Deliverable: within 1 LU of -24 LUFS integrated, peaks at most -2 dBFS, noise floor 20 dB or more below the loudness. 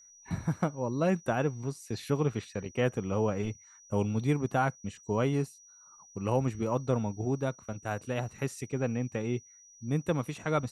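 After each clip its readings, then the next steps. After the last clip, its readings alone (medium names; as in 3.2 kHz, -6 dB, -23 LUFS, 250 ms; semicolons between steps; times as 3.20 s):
steady tone 5.8 kHz; tone level -54 dBFS; loudness -32.0 LUFS; peak level -15.0 dBFS; loudness target -24.0 LUFS
-> band-stop 5.8 kHz, Q 30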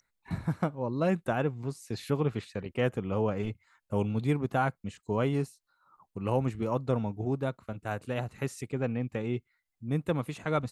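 steady tone not found; loudness -32.0 LUFS; peak level -15.0 dBFS; loudness target -24.0 LUFS
-> trim +8 dB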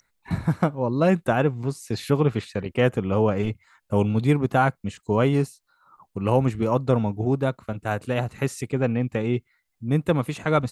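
loudness -24.0 LUFS; peak level -7.0 dBFS; noise floor -74 dBFS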